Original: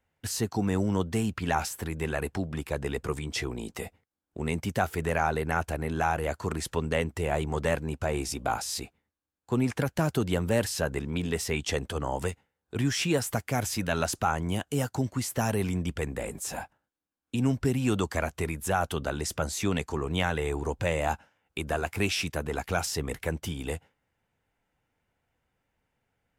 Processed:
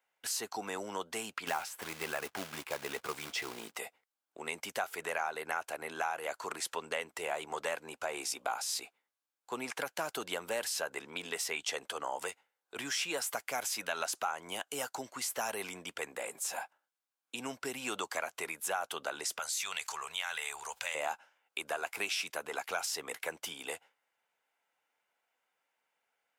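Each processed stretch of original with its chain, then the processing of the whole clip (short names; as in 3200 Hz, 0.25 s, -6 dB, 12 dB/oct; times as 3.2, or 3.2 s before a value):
1.47–3.77 tone controls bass +9 dB, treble -7 dB + short-mantissa float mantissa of 2-bit
19.39–20.95 passive tone stack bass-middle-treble 10-0-10 + fast leveller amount 70%
whole clip: HPF 700 Hz 12 dB/oct; notch 1800 Hz, Q 18; compressor 3:1, threshold -32 dBFS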